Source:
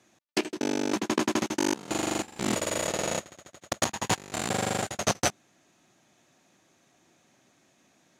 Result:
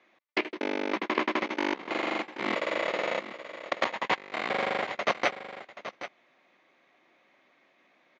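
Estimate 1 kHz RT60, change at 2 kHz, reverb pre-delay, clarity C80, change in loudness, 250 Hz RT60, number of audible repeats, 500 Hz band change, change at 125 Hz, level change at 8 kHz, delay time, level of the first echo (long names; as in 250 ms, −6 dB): no reverb audible, +4.0 dB, no reverb audible, no reverb audible, −1.5 dB, no reverb audible, 1, 0.0 dB, −14.0 dB, −21.0 dB, 779 ms, −12.5 dB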